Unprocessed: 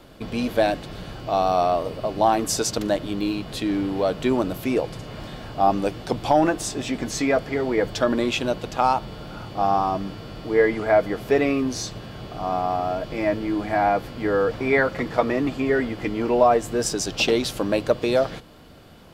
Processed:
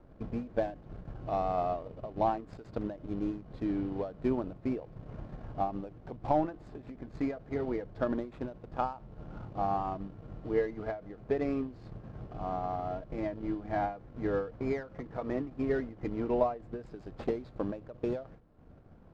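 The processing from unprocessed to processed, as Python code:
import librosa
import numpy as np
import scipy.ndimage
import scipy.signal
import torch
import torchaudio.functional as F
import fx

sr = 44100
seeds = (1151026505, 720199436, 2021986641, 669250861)

y = scipy.signal.medfilt(x, 15)
y = fx.spacing_loss(y, sr, db_at_10k=22)
y = fx.transient(y, sr, attack_db=2, sustain_db=-8)
y = fx.low_shelf(y, sr, hz=110.0, db=7.5)
y = fx.end_taper(y, sr, db_per_s=140.0)
y = F.gain(torch.from_numpy(y), -9.0).numpy()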